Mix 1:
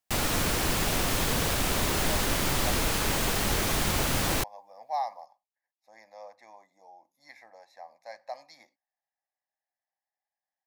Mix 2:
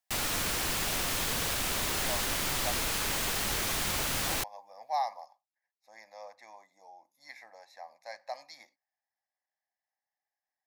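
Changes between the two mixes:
background −5.5 dB
master: add tilt shelving filter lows −4 dB, about 860 Hz

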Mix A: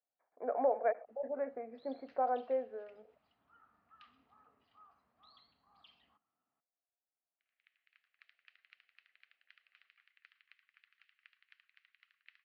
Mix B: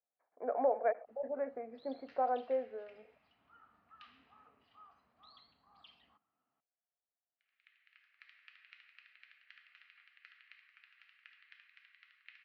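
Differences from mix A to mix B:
first sound +3.0 dB
reverb: on, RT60 1.6 s

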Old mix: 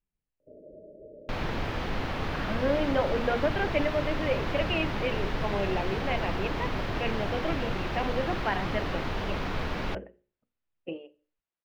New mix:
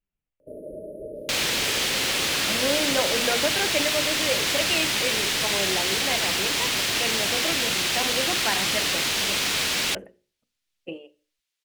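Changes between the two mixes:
first sound +10.5 dB
second sound: add meter weighting curve D
master: remove high-frequency loss of the air 300 metres

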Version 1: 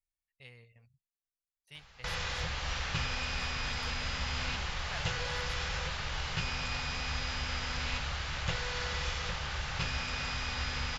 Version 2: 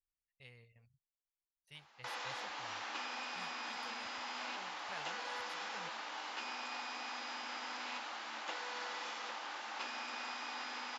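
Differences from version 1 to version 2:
speech −4.5 dB
background: add Chebyshev high-pass with heavy ripple 220 Hz, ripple 9 dB

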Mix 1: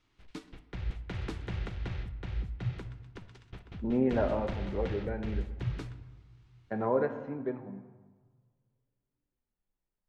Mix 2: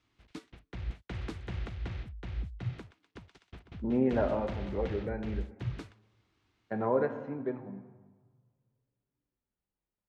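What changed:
background: send off
master: add high-pass filter 45 Hz

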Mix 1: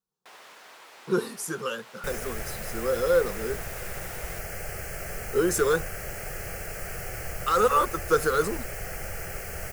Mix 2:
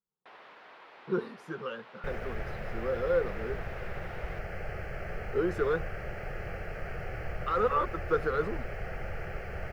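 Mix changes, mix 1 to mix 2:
speech −4.5 dB
master: add high-frequency loss of the air 350 metres

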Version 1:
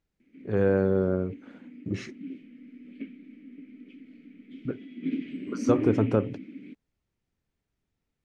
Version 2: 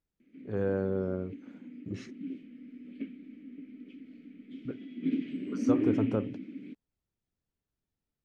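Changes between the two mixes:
speech −7.0 dB
master: add parametric band 2,200 Hz −4 dB 0.7 octaves

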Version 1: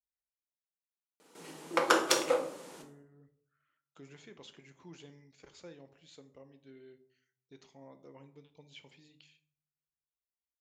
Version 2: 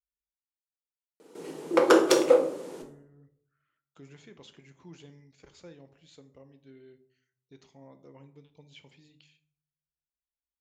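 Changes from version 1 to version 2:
background: add parametric band 400 Hz +12 dB 1.3 octaves
master: add low-shelf EQ 180 Hz +7.5 dB

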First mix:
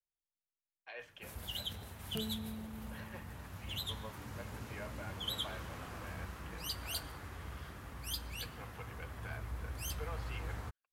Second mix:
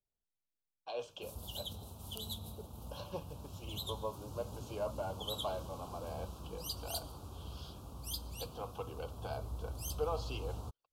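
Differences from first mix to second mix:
speech +11.5 dB
second sound: add resonant band-pass 1,700 Hz, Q 0.66
master: add Butterworth band-reject 1,900 Hz, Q 0.81

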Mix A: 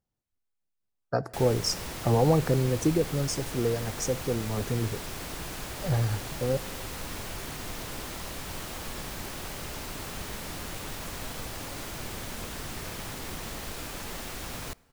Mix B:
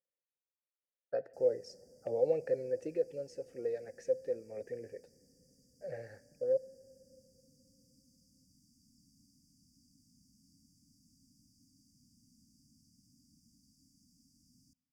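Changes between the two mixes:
background: add linear-phase brick-wall band-stop 290–4,600 Hz
master: add formant filter e

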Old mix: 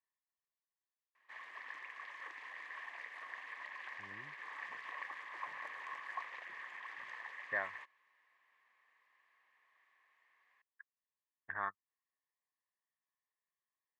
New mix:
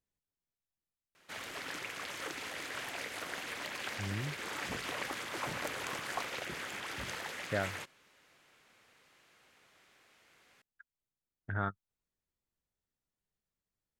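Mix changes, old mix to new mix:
speech −8.0 dB
master: remove pair of resonant band-passes 1,400 Hz, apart 0.71 octaves

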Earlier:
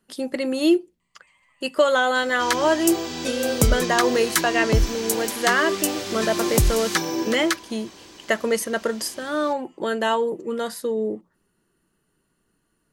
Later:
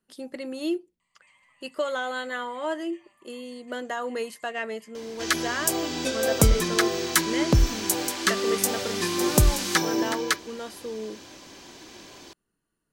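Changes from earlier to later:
speech −10.0 dB
second sound: entry +2.80 s

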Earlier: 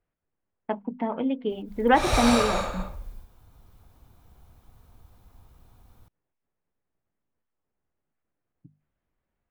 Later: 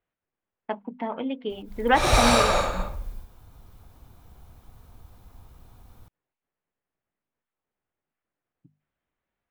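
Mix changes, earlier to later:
speech: add spectral tilt +2 dB per octave
background +4.5 dB

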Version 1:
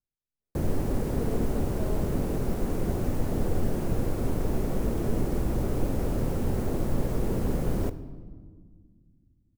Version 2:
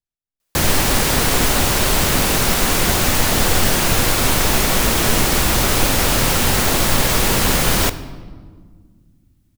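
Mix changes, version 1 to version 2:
background +7.5 dB
master: remove drawn EQ curve 430 Hz 0 dB, 980 Hz −13 dB, 3,500 Hz −25 dB, 11,000 Hz −20 dB

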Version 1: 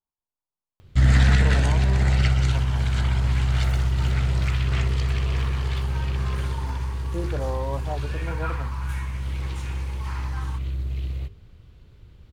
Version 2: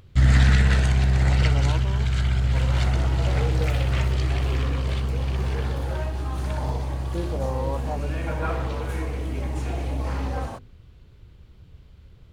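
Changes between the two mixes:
first sound: entry −0.80 s
second sound: remove elliptic high-pass filter 910 Hz

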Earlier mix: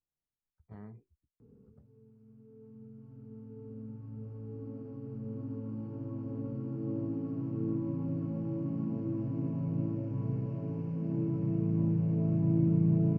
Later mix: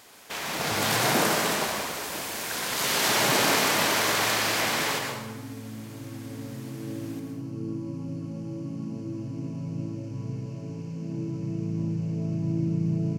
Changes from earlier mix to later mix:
speech +10.5 dB
first sound: unmuted
master: remove low-pass filter 1,400 Hz 12 dB per octave

